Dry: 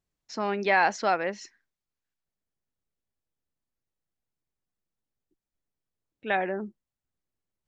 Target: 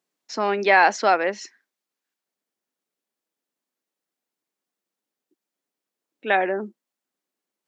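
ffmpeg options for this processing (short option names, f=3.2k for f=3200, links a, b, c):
-af "highpass=f=230:w=0.5412,highpass=f=230:w=1.3066,volume=6.5dB"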